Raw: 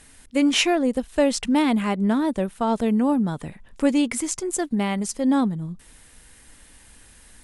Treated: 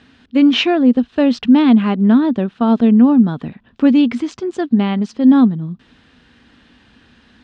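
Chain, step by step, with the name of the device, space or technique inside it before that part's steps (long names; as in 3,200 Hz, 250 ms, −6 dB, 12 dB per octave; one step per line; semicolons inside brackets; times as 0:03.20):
guitar cabinet (loudspeaker in its box 92–3,900 Hz, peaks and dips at 240 Hz +8 dB, 560 Hz −5 dB, 900 Hz −4 dB, 2,100 Hz −7 dB)
level +6 dB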